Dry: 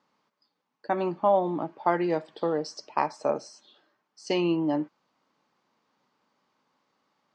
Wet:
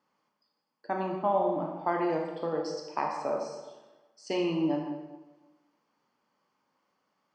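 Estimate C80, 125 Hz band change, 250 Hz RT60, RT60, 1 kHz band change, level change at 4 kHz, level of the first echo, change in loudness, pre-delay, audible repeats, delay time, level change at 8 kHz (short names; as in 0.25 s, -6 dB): 5.5 dB, -3.0 dB, 1.3 s, 1.2 s, -3.0 dB, -4.0 dB, none, -3.5 dB, 21 ms, none, none, -4.0 dB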